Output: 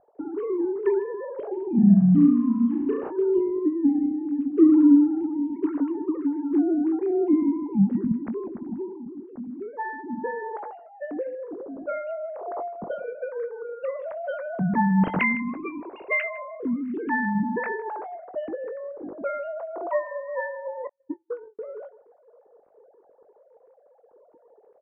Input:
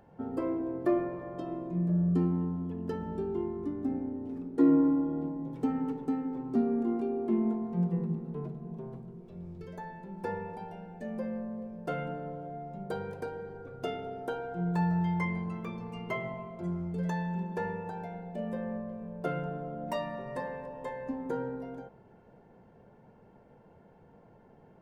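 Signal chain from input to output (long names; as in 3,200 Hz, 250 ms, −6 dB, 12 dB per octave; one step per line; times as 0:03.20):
three sine waves on the formant tracks
in parallel at +1 dB: downward compressor 6 to 1, threshold −40 dBFS, peak gain reduction 20.5 dB
on the sum: slap from a distant wall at 27 metres, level −20 dB
0:20.87–0:21.59: noise gate −30 dBFS, range −50 dB
low-shelf EQ 260 Hz +9 dB
low-pass that shuts in the quiet parts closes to 650 Hz, open at −20 dBFS
0:01.71–0:03.09: flutter between parallel walls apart 5.9 metres, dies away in 0.65 s
automatic gain control gain up to 3.5 dB
double-tracking delay 21 ms −13.5 dB
level −1.5 dB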